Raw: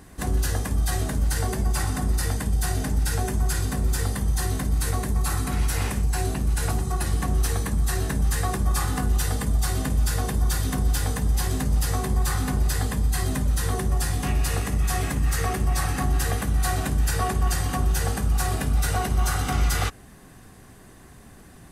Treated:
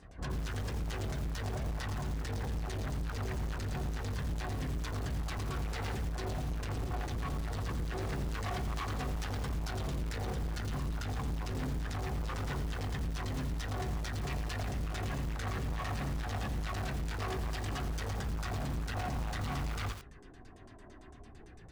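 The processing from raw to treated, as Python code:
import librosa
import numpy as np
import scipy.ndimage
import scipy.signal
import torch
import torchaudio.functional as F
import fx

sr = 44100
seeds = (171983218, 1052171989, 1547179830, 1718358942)

y = fx.self_delay(x, sr, depth_ms=0.23)
y = fx.chorus_voices(y, sr, voices=4, hz=0.15, base_ms=28, depth_ms=1.6, mix_pct=60)
y = fx.filter_lfo_lowpass(y, sr, shape='saw_down', hz=8.9, low_hz=530.0, high_hz=7500.0, q=1.6)
y = np.clip(y, -10.0 ** (-29.5 / 20.0), 10.0 ** (-29.5 / 20.0))
y = fx.echo_crushed(y, sr, ms=86, feedback_pct=55, bits=6, wet_db=-9.0)
y = y * 10.0 ** (-4.0 / 20.0)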